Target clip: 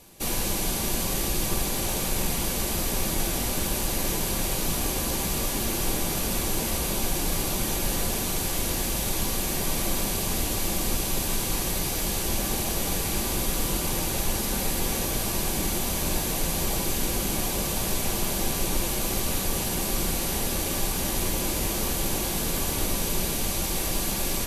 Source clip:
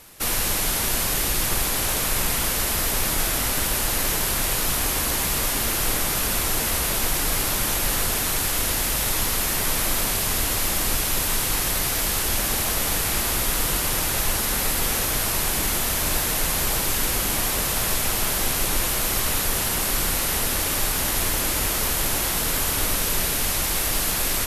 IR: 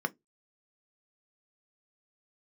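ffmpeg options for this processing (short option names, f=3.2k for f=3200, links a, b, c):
-filter_complex "[0:a]asplit=2[a][b];[b]highpass=f=290:p=1[c];[1:a]atrim=start_sample=2205[d];[c][d]afir=irnorm=-1:irlink=0,volume=-6dB[e];[a][e]amix=inputs=2:normalize=0,volume=-1.5dB"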